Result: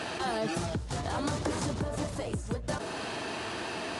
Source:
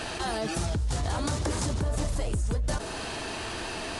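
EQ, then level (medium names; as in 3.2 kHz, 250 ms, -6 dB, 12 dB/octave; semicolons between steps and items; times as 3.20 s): high-pass 120 Hz 12 dB/octave; treble shelf 4.8 kHz -7.5 dB; 0.0 dB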